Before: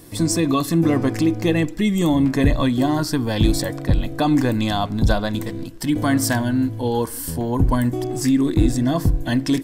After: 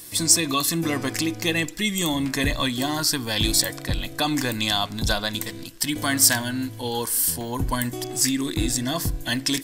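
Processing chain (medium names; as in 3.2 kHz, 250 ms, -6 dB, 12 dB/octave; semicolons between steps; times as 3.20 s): tilt shelf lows -9 dB, about 1.4 kHz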